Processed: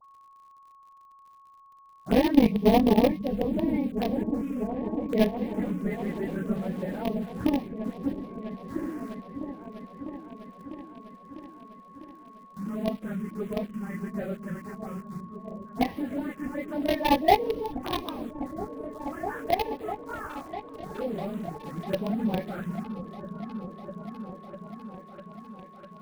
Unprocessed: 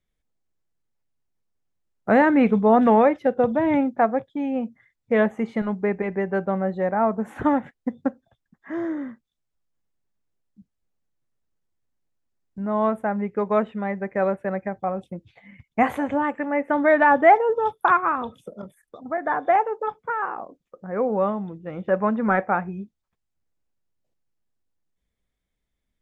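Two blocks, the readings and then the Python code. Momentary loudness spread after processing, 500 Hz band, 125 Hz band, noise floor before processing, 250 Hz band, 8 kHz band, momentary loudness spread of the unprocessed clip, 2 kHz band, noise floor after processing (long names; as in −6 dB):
22 LU, −7.5 dB, −0.5 dB, −79 dBFS, −3.0 dB, can't be measured, 16 LU, −12.5 dB, −54 dBFS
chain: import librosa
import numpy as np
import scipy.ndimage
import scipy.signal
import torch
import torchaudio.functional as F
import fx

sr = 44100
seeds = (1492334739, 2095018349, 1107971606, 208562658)

p1 = fx.phase_scramble(x, sr, seeds[0], window_ms=50)
p2 = p1 + 10.0 ** (-37.0 / 20.0) * np.sin(2.0 * np.pi * 1100.0 * np.arange(len(p1)) / sr)
p3 = fx.dispersion(p2, sr, late='highs', ms=61.0, hz=1900.0)
p4 = fx.cheby_harmonics(p3, sr, harmonics=(2, 7), levels_db=(-26, -23), full_scale_db=0.5)
p5 = fx.quant_companded(p4, sr, bits=2)
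p6 = p4 + F.gain(torch.from_numpy(p5), -10.0).numpy()
p7 = fx.env_phaser(p6, sr, low_hz=350.0, high_hz=1400.0, full_db=-18.5)
p8 = fx.dmg_crackle(p7, sr, seeds[1], per_s=72.0, level_db=-44.0)
p9 = fx.low_shelf(p8, sr, hz=470.0, db=7.0)
p10 = p9 + fx.echo_opening(p9, sr, ms=650, hz=200, octaves=1, feedback_pct=70, wet_db=-6, dry=0)
y = F.gain(torch.from_numpy(p10), -8.5).numpy()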